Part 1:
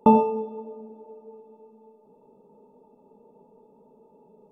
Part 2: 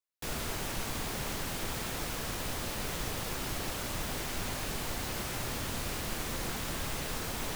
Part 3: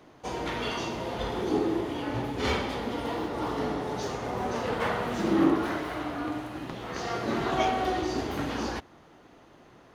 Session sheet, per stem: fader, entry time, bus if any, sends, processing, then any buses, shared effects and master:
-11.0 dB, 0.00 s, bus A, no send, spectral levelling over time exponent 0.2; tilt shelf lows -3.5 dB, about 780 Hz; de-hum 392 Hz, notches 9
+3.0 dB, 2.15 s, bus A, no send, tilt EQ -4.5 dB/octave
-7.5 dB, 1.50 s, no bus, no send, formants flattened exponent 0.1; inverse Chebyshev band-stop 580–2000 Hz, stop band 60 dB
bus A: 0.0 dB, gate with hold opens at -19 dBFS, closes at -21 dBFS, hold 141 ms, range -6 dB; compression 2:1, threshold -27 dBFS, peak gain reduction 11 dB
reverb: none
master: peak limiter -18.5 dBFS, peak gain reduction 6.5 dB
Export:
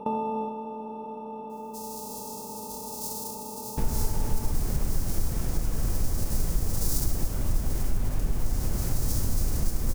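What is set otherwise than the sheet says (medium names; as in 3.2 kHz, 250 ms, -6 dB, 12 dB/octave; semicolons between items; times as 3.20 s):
stem 2: entry 2.15 s -> 3.55 s; master: missing peak limiter -18.5 dBFS, peak gain reduction 6.5 dB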